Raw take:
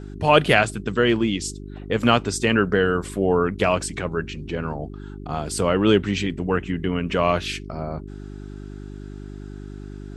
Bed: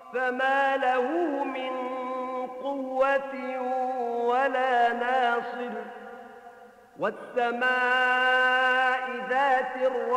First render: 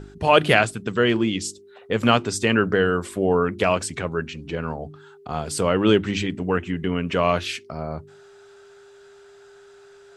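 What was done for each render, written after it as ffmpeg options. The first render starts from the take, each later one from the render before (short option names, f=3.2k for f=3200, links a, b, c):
-af "bandreject=f=50:t=h:w=4,bandreject=f=100:t=h:w=4,bandreject=f=150:t=h:w=4,bandreject=f=200:t=h:w=4,bandreject=f=250:t=h:w=4,bandreject=f=300:t=h:w=4,bandreject=f=350:t=h:w=4"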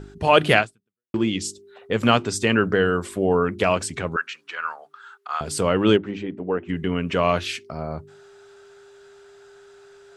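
-filter_complex "[0:a]asettb=1/sr,asplit=3[a][b][c];[a]atrim=end=4.164[d];[b]atrim=start=4.16:end=5.41,asetpts=PTS-STARTPTS,afade=t=in:d=0.004:c=qsin,afade=t=out:st=1.246:d=0.004:c=qsin,highpass=f=1.3k:t=q:w=2.8[e];[c]atrim=start=5.406[f];[d][e]acrossfade=d=0.004:c1=hsin:c2=qsin[g];[g][f]acrossfade=d=0.004:c1=qsin:c2=hsin,asplit=3[h][i][j];[h]afade=t=out:st=5.96:d=0.02[k];[i]bandpass=f=490:t=q:w=0.79,afade=t=in:st=5.96:d=0.02,afade=t=out:st=6.68:d=0.02[l];[j]afade=t=in:st=6.68:d=0.02[m];[k][l][m]amix=inputs=3:normalize=0,asplit=2[n][o];[n]atrim=end=1.14,asetpts=PTS-STARTPTS,afade=t=out:st=0.59:d=0.55:c=exp[p];[o]atrim=start=1.14,asetpts=PTS-STARTPTS,afade=t=in:d=0.004:c=hsin[q];[p][q]concat=n=2:v=0:a=1"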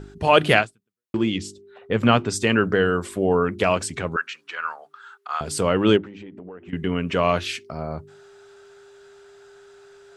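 -filter_complex "[0:a]asettb=1/sr,asplit=3[a][b][c];[a]atrim=end=1.384[d];[b]atrim=start=1.38:end=2.3,asetpts=PTS-STARTPTS,afade=t=in:d=0.004:c=qsin,afade=t=out:st=0.916:d=0.004:c=qsin,bass=f=250:g=3,treble=f=4k:g=-9[e];[c]atrim=start=2.296[f];[d][e]acrossfade=d=0.004:c1=hsin:c2=qsin[g];[g][f]acrossfade=d=0.004:c1=qsin:c2=hsin,asettb=1/sr,asplit=3[h][i][j];[h]atrim=end=6.044[k];[i]atrim=start=6.04:end=6.73,asetpts=PTS-STARTPTS,afade=t=in:d=0.004:c=qsin,afade=t=out:st=0.686:d=0.004:c=qsin,acompressor=threshold=-35dB:ratio=12:attack=3.2:release=140:knee=1:detection=peak[l];[j]atrim=start=6.726[m];[k][l]acrossfade=d=0.004:c1=hsin:c2=qsin[n];[n][m]acrossfade=d=0.004:c1=qsin:c2=hsin"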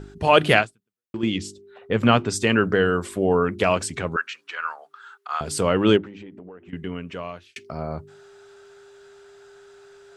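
-filter_complex "[0:a]asettb=1/sr,asplit=3[a][b][c];[a]atrim=end=4.224[d];[b]atrim=start=4.22:end=5.32,asetpts=PTS-STARTPTS,afade=t=in:d=0.004:c=qsin,afade=t=out:st=1.096:d=0.004:c=qsin,highpass=f=370:p=1[e];[c]atrim=start=5.316[f];[d][e]acrossfade=d=0.004:c1=hsin:c2=qsin[g];[g][f]acrossfade=d=0.004:c1=qsin:c2=hsin,asplit=3[h][i][j];[h]atrim=end=1.23,asetpts=PTS-STARTPTS,afade=t=out:st=0.62:d=0.61:silence=0.398107[k];[i]atrim=start=1.23:end=7.56,asetpts=PTS-STARTPTS,afade=t=in:d=0.004:c=hsin:silence=0.398107,afade=t=out:st=4.86:d=1.47[l];[j]atrim=start=7.56,asetpts=PTS-STARTPTS,afade=t=in:d=0.004:c=hsin[m];[k][l][m]concat=n=3:v=0:a=1"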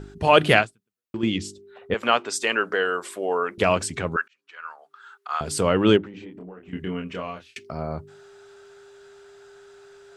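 -filter_complex "[0:a]asettb=1/sr,asplit=3[a][b][c];[a]atrim=end=1.944[d];[b]atrim=start=1.94:end=3.58,asetpts=PTS-STARTPTS,afade=t=in:d=0.004:c=qsin,afade=t=out:st=1.636:d=0.004:c=qsin,highpass=530[e];[c]atrim=start=3.576[f];[d][e]acrossfade=d=0.004:c1=hsin:c2=qsin[g];[g][f]acrossfade=d=0.004:c1=qsin:c2=hsin,asettb=1/sr,asplit=3[h][i][j];[h]atrim=end=6.114[k];[i]atrim=start=6.11:end=7.59,asetpts=PTS-STARTPTS,afade=t=in:d=0.004:c=qsin,afade=t=out:st=1.476:d=0.004:c=qsin,asplit=2[l][m];[m]adelay=27,volume=-4dB[n];[l][n]amix=inputs=2:normalize=0,atrim=end_sample=65268[o];[j]atrim=start=7.586[p];[k][o]acrossfade=d=0.004:c1=hsin:c2=qsin[q];[q][p]acrossfade=d=0.004:c1=qsin:c2=hsin,asplit=2[r][s];[r]atrim=end=4.28,asetpts=PTS-STARTPTS,afade=t=out:st=4.276:d=0.004:c=hsin[t];[s]atrim=start=4.28,asetpts=PTS-STARTPTS,afade=t=in:d=1.01[u];[t][u]concat=n=2:v=0:a=1"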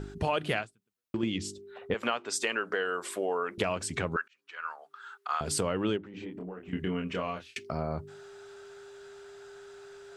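-af "acompressor=threshold=-27dB:ratio=6"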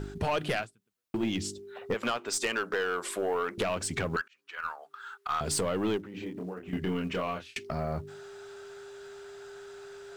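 -filter_complex "[0:a]asplit=2[a][b];[b]acrusher=bits=5:mode=log:mix=0:aa=0.000001,volume=-8dB[c];[a][c]amix=inputs=2:normalize=0,aeval=exprs='(tanh(12.6*val(0)+0.15)-tanh(0.15))/12.6':c=same"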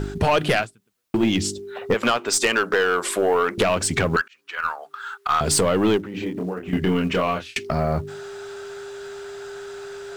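-af "volume=10.5dB"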